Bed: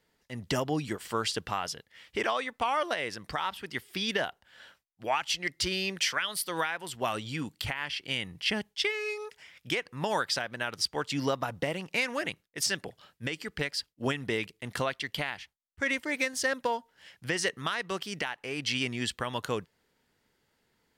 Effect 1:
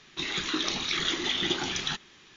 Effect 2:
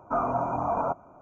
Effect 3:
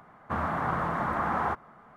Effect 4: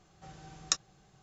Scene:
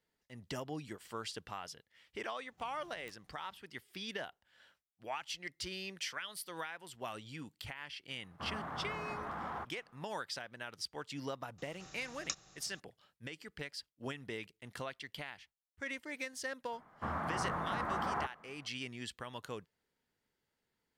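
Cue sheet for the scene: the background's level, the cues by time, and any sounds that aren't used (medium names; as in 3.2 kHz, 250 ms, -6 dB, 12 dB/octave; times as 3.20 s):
bed -12 dB
2.36 s: add 4 -14 dB + dead-time distortion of 0.15 ms
8.10 s: add 3 -16 dB + waveshaping leveller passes 1
11.58 s: add 4 -10.5 dB + spectral levelling over time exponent 0.6
16.72 s: add 3 -8 dB
not used: 1, 2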